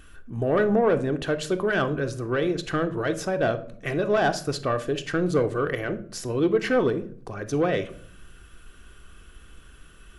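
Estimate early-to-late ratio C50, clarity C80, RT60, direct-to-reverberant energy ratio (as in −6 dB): 15.0 dB, 19.5 dB, 0.55 s, 7.0 dB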